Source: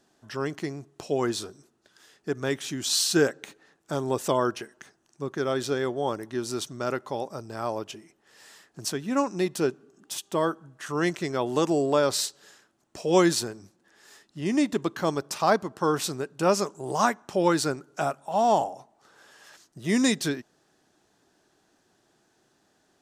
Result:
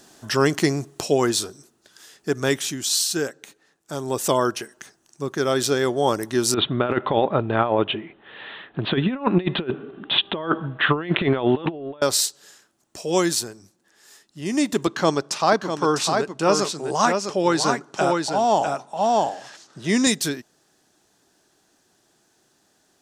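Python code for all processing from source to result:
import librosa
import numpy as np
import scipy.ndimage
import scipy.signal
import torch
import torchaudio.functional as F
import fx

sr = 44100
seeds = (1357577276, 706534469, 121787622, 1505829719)

y = fx.chain(x, sr, fx.steep_lowpass(hz=3700.0, slope=96),
    fx.over_compress(threshold_db=-32.0, ratio=-0.5), at=(6.54, 12.02))
y = fx.chain(y, sr, fx.bandpass_edges(low_hz=120.0, high_hz=5900.0),
    fx.echo_single(ms=652, db=-5.0), at=(14.87, 20.07))
y = fx.high_shelf(y, sr, hz=4400.0, db=9.0)
y = fx.rider(y, sr, range_db=10, speed_s=0.5)
y = F.gain(torch.from_numpy(y), 4.5).numpy()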